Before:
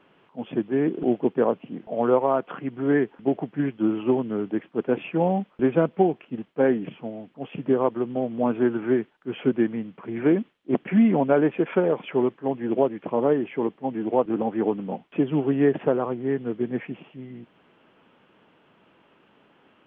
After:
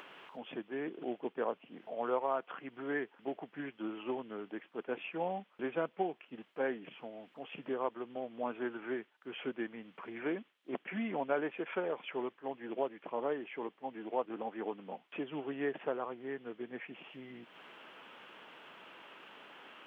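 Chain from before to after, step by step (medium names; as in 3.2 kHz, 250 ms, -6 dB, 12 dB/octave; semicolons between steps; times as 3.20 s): high-pass 1.2 kHz 6 dB/octave; upward compressor, threshold -34 dBFS; trim -5.5 dB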